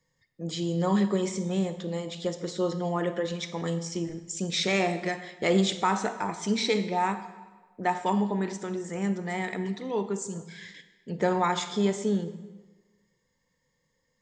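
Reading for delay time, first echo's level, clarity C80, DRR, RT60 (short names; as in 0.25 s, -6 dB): none, none, 13.5 dB, 11.0 dB, 1.3 s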